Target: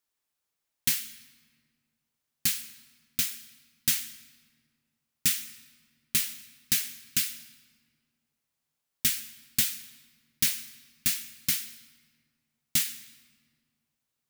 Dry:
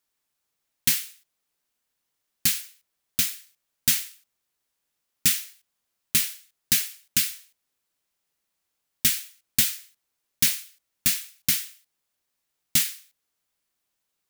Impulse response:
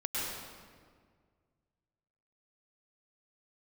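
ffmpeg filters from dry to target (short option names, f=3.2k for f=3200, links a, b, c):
-filter_complex "[0:a]asplit=2[a][b];[1:a]atrim=start_sample=2205,lowshelf=f=160:g=-9.5[c];[b][c]afir=irnorm=-1:irlink=0,volume=-20dB[d];[a][d]amix=inputs=2:normalize=0,volume=-5dB"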